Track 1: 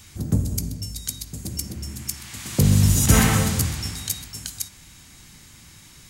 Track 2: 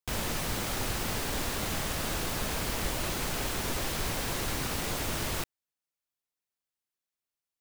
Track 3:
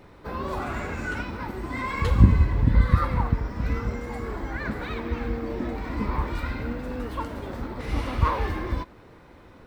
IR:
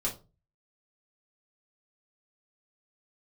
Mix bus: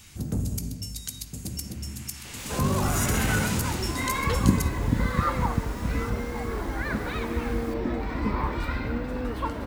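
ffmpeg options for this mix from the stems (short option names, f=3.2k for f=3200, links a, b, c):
-filter_complex "[0:a]equalizer=f=2.7k:t=o:w=0.22:g=4.5,alimiter=limit=-13.5dB:level=0:latency=1:release=59,volume=18dB,asoftclip=hard,volume=-18dB,volume=-3.5dB,asplit=2[a][b];[b]volume=-19.5dB[c];[1:a]adelay=2300,volume=-15dB[d];[2:a]acrossover=split=150[e][f];[e]acompressor=threshold=-27dB:ratio=6[g];[g][f]amix=inputs=2:normalize=0,adelay=2250,volume=1.5dB[h];[3:a]atrim=start_sample=2205[i];[c][i]afir=irnorm=-1:irlink=0[j];[a][d][h][j]amix=inputs=4:normalize=0"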